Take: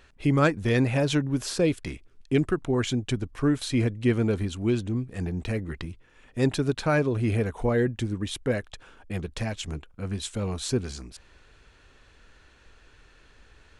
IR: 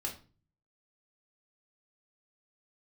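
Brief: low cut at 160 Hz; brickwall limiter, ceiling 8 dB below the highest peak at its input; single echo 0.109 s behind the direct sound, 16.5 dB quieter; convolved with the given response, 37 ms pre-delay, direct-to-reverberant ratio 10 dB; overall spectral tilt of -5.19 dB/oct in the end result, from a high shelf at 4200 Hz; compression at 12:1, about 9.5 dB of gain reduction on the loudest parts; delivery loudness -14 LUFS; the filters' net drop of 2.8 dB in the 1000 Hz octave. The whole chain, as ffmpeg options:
-filter_complex "[0:a]highpass=160,equalizer=f=1k:t=o:g=-3.5,highshelf=f=4.2k:g=-5.5,acompressor=threshold=-28dB:ratio=12,alimiter=level_in=2dB:limit=-24dB:level=0:latency=1,volume=-2dB,aecho=1:1:109:0.15,asplit=2[a][b];[1:a]atrim=start_sample=2205,adelay=37[c];[b][c]afir=irnorm=-1:irlink=0,volume=-11dB[d];[a][d]amix=inputs=2:normalize=0,volume=22.5dB"

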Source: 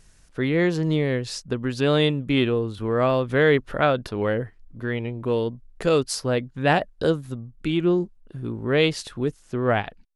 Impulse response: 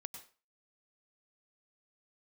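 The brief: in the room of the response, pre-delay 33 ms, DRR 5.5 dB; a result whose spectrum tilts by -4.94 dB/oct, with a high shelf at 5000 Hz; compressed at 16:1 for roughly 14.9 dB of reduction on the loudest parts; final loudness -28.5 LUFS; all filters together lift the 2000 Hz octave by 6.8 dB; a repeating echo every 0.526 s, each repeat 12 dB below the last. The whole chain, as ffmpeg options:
-filter_complex "[0:a]equalizer=f=2k:t=o:g=7.5,highshelf=f=5k:g=6,acompressor=threshold=-26dB:ratio=16,aecho=1:1:526|1052|1578:0.251|0.0628|0.0157,asplit=2[a][b];[1:a]atrim=start_sample=2205,adelay=33[c];[b][c]afir=irnorm=-1:irlink=0,volume=-1.5dB[d];[a][d]amix=inputs=2:normalize=0,volume=2dB"

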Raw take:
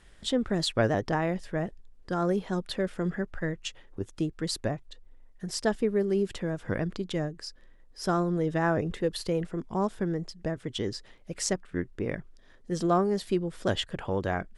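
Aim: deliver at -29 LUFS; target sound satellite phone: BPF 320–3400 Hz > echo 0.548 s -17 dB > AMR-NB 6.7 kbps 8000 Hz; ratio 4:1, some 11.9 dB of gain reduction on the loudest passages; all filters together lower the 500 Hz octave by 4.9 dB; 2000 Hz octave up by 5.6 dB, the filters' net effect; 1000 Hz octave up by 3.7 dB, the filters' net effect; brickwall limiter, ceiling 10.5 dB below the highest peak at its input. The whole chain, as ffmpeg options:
-af "equalizer=f=500:t=o:g=-7.5,equalizer=f=1k:t=o:g=6.5,equalizer=f=2k:t=o:g=5.5,acompressor=threshold=-33dB:ratio=4,alimiter=level_in=4dB:limit=-24dB:level=0:latency=1,volume=-4dB,highpass=320,lowpass=3.4k,aecho=1:1:548:0.141,volume=15dB" -ar 8000 -c:a libopencore_amrnb -b:a 6700

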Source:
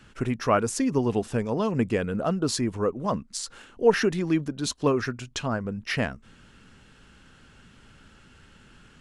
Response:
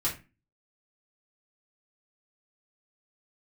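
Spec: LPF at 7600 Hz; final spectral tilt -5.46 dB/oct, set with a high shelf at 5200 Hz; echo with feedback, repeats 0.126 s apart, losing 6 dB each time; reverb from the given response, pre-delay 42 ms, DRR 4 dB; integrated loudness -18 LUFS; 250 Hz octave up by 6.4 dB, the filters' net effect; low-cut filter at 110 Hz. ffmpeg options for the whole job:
-filter_complex "[0:a]highpass=110,lowpass=7.6k,equalizer=f=250:t=o:g=8,highshelf=f=5.2k:g=9,aecho=1:1:126|252|378|504|630|756:0.501|0.251|0.125|0.0626|0.0313|0.0157,asplit=2[a][b];[1:a]atrim=start_sample=2205,adelay=42[c];[b][c]afir=irnorm=-1:irlink=0,volume=-10.5dB[d];[a][d]amix=inputs=2:normalize=0,volume=2dB"

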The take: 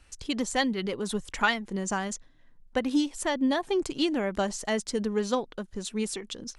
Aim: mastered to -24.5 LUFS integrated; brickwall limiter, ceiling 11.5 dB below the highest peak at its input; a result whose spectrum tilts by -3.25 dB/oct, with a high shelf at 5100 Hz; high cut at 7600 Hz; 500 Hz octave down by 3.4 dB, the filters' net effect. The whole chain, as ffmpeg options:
-af "lowpass=7.6k,equalizer=f=500:t=o:g=-4.5,highshelf=f=5.1k:g=7.5,volume=8.5dB,alimiter=limit=-14.5dB:level=0:latency=1"

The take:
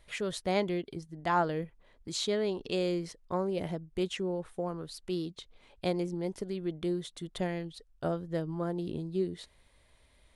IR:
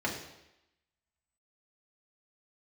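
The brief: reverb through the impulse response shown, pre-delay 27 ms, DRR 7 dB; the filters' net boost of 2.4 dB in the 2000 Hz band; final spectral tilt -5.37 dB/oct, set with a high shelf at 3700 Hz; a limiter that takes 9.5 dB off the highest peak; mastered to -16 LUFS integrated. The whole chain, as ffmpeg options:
-filter_complex "[0:a]equalizer=f=2k:t=o:g=5,highshelf=f=3.7k:g=-7.5,alimiter=level_in=1dB:limit=-24dB:level=0:latency=1,volume=-1dB,asplit=2[a][b];[1:a]atrim=start_sample=2205,adelay=27[c];[b][c]afir=irnorm=-1:irlink=0,volume=-14.5dB[d];[a][d]amix=inputs=2:normalize=0,volume=19.5dB"

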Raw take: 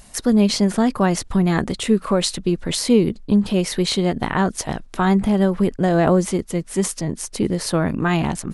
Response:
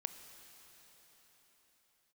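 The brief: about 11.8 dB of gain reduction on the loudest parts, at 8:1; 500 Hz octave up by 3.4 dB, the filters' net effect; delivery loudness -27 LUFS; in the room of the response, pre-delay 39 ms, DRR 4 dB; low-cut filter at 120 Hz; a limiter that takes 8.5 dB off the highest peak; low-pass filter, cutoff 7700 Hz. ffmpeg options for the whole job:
-filter_complex "[0:a]highpass=120,lowpass=7.7k,equalizer=f=500:t=o:g=4.5,acompressor=threshold=-21dB:ratio=8,alimiter=limit=-18.5dB:level=0:latency=1,asplit=2[a][b];[1:a]atrim=start_sample=2205,adelay=39[c];[b][c]afir=irnorm=-1:irlink=0,volume=-2dB[d];[a][d]amix=inputs=2:normalize=0"

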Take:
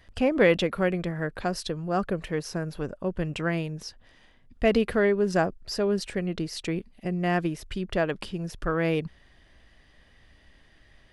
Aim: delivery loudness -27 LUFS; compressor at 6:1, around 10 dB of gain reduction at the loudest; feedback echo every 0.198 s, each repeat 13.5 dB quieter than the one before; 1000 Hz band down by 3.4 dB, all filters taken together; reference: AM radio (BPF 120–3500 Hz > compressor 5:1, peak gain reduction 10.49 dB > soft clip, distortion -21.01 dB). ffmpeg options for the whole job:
-af "equalizer=f=1k:t=o:g=-5.5,acompressor=threshold=-27dB:ratio=6,highpass=120,lowpass=3.5k,aecho=1:1:198|396:0.211|0.0444,acompressor=threshold=-36dB:ratio=5,asoftclip=threshold=-30dB,volume=14.5dB"

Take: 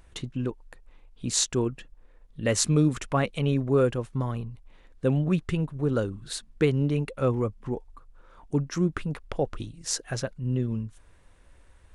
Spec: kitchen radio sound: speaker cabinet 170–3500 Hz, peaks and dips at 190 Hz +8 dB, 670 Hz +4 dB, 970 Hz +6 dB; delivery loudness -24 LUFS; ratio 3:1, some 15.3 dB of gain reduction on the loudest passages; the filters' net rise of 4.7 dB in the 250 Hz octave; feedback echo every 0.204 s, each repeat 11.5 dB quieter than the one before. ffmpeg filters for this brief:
-af "equalizer=f=250:t=o:g=5,acompressor=threshold=-37dB:ratio=3,highpass=170,equalizer=f=190:t=q:w=4:g=8,equalizer=f=670:t=q:w=4:g=4,equalizer=f=970:t=q:w=4:g=6,lowpass=f=3.5k:w=0.5412,lowpass=f=3.5k:w=1.3066,aecho=1:1:204|408|612:0.266|0.0718|0.0194,volume=14dB"

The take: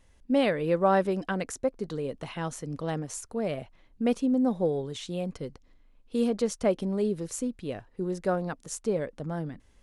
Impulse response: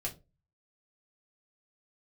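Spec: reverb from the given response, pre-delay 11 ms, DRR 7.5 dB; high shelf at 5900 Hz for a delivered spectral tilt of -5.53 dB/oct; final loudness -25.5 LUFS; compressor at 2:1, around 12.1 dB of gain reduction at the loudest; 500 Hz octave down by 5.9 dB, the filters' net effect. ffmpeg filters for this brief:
-filter_complex "[0:a]equalizer=f=500:t=o:g=-7,highshelf=f=5.9k:g=-4,acompressor=threshold=-46dB:ratio=2,asplit=2[a][b];[1:a]atrim=start_sample=2205,adelay=11[c];[b][c]afir=irnorm=-1:irlink=0,volume=-8.5dB[d];[a][d]amix=inputs=2:normalize=0,volume=16.5dB"

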